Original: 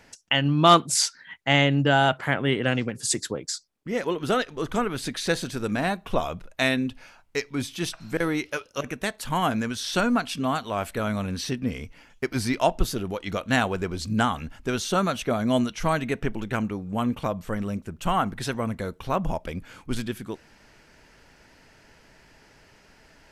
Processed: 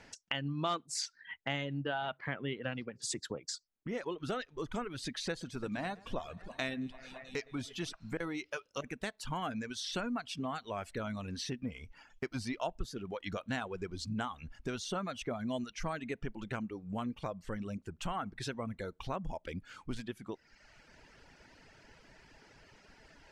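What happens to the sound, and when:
0:01.80–0:03.02: low-pass filter 4,300 Hz 24 dB per octave
0:05.30–0:07.93: delay that swaps between a low-pass and a high-pass 109 ms, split 2,400 Hz, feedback 82%, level −13.5 dB
whole clip: reverb reduction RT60 0.94 s; low-pass filter 7,300 Hz 12 dB per octave; downward compressor 2.5 to 1, threshold −37 dBFS; level −2 dB

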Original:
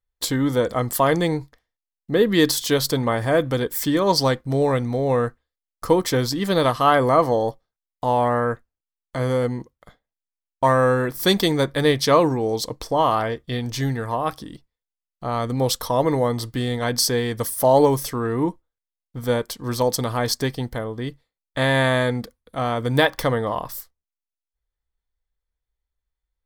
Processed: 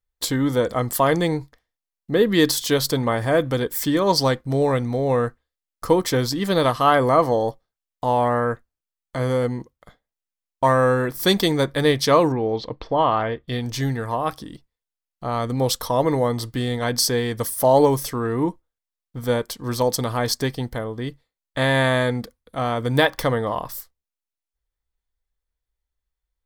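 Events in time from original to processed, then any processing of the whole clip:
0:12.32–0:13.48: low-pass filter 3,600 Hz 24 dB per octave

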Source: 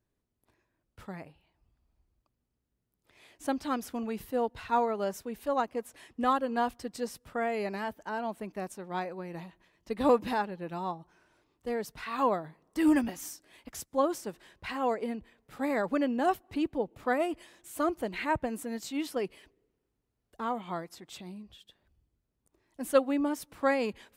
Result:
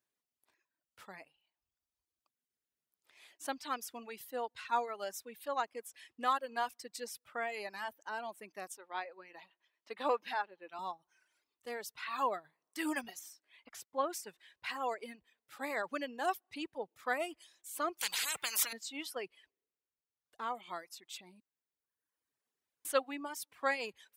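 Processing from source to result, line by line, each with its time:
0:08.77–0:10.79: three-way crossover with the lows and the highs turned down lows −22 dB, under 230 Hz, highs −13 dB, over 4,500 Hz
0:13.19–0:14.13: bass and treble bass 0 dB, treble −10 dB
0:18.01–0:18.73: every bin compressed towards the loudest bin 10 to 1
0:19.24–0:20.55: high-shelf EQ 6,500 Hz −7 dB
0:21.40–0:22.85: fill with room tone
whole clip: high-pass filter 1,500 Hz 6 dB per octave; reverb reduction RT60 1.2 s; level +1 dB

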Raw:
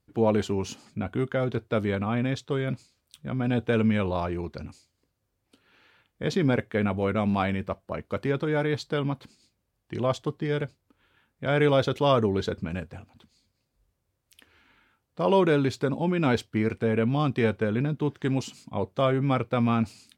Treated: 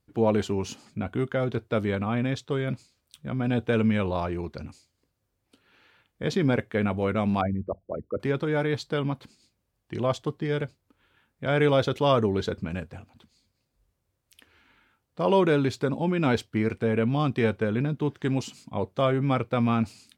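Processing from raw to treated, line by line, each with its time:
0:07.41–0:08.20: spectral envelope exaggerated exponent 3

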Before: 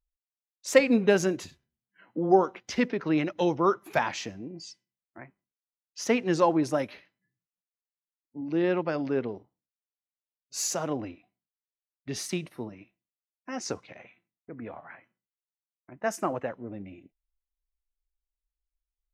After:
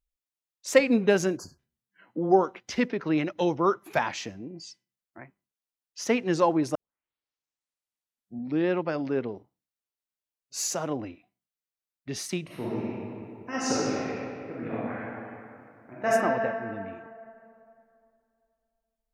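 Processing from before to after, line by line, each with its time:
0:01.37–0:01.58: time-frequency box erased 1,700–4,300 Hz
0:06.75: tape start 1.93 s
0:12.44–0:16.09: thrown reverb, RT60 2.6 s, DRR −8.5 dB

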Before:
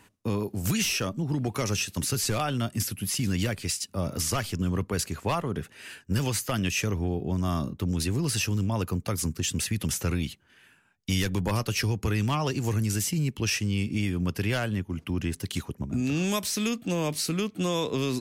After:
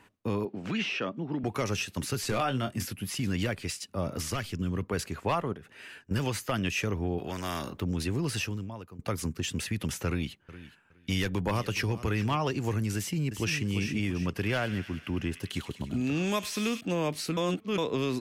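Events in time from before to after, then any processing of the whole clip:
0:00.45–0:01.44: Chebyshev band-pass filter 210–3,100 Hz
0:02.27–0:02.93: double-tracking delay 23 ms −8 dB
0:04.24–0:04.83: dynamic equaliser 810 Hz, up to −7 dB, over −44 dBFS, Q 0.75
0:05.53–0:06.11: downward compressor, threshold −40 dBFS
0:07.18–0:07.80: every bin compressed towards the loudest bin 2 to 1
0:08.38–0:08.99: fade out quadratic, to −16.5 dB
0:10.07–0:12.37: repeating echo 416 ms, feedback 18%, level −16 dB
0:12.97–0:13.65: delay throw 340 ms, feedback 40%, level −7.5 dB
0:14.26–0:16.81: delay with a high-pass on its return 101 ms, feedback 71%, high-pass 2,100 Hz, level −8 dB
0:17.37–0:17.78: reverse
whole clip: bass and treble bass −4 dB, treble −9 dB

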